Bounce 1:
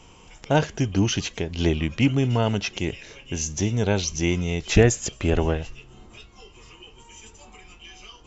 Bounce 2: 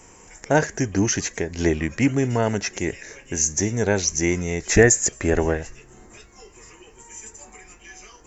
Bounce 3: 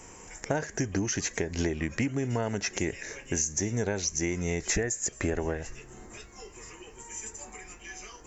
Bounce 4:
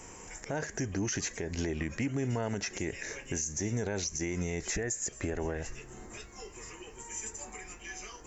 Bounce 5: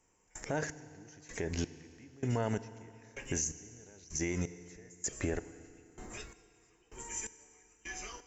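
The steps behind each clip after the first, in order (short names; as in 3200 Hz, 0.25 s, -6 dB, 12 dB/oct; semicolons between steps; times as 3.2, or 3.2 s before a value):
EQ curve 140 Hz 0 dB, 400 Hz +6 dB, 1300 Hz +3 dB, 1800 Hz +13 dB, 3100 Hz -8 dB, 6900 Hz +13 dB; gain -2.5 dB
compressor 20:1, threshold -25 dBFS, peak gain reduction 17.5 dB
limiter -24 dBFS, peak gain reduction 10.5 dB
step gate "...xxx.." 128 bpm -24 dB; FDN reverb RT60 2.6 s, high-frequency decay 0.95×, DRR 14 dB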